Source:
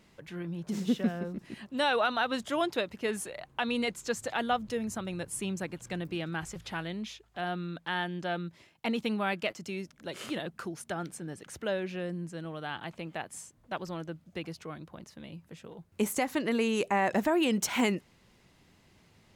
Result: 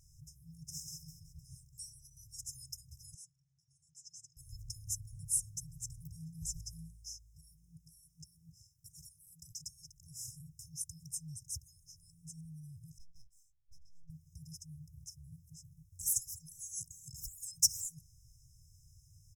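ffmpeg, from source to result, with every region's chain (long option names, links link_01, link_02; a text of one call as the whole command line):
ffmpeg -i in.wav -filter_complex "[0:a]asettb=1/sr,asplit=3[link_01][link_02][link_03];[link_01]atrim=end=3.144[link_04];[link_02]atrim=start=3.14:end=4.37,asetpts=PTS-STARTPTS,afade=type=in:duration=0.004:curve=qsin,afade=type=out:start_time=1.226:duration=0.004:curve=qsin,highpass=330,lowpass=3000,aecho=1:1:5.6:0.34,atrim=end_sample=54243[link_05];[link_03]atrim=start=4.366[link_06];[link_04][link_05]acrossfade=duration=0.004:curve1=hsin:curve2=qsin[link_07];[link_07][link_06]acrossfade=duration=0.004:curve1=qsin:curve2=hsin,asettb=1/sr,asplit=3[link_08][link_09][link_10];[link_08]atrim=end=12.984[link_11];[link_09]atrim=start=12.98:end=14.1,asetpts=PTS-STARTPTS,afade=type=in:duration=0.004:curve=qsin,afade=type=out:start_time=1.116:duration=0.004:curve=qsin,asplit=3[link_12][link_13][link_14];[link_12]bandpass=frequency=270:width_type=q:width=8,volume=0dB[link_15];[link_13]bandpass=frequency=2290:width_type=q:width=8,volume=-6dB[link_16];[link_14]bandpass=frequency=3010:width_type=q:width=8,volume=-9dB[link_17];[link_15][link_16][link_17]amix=inputs=3:normalize=0,aeval=exprs='max(val(0),0)':channel_layout=same,asplit=2[link_18][link_19];[link_19]adelay=18,volume=-8.5dB[link_20];[link_18][link_20]amix=inputs=2:normalize=0,atrim=end_sample=49392[link_21];[link_10]atrim=start=14.096[link_22];[link_11][link_21]acrossfade=duration=0.004:curve1=hsin:curve2=qsin[link_23];[link_23][link_22]acrossfade=duration=0.004:curve1=qsin:curve2=hsin,afftfilt=real='re*(1-between(b*sr/4096,170,5000))':imag='im*(1-between(b*sr/4096,170,5000))':win_size=4096:overlap=0.75,aecho=1:1:2.7:0.91,volume=3dB" out.wav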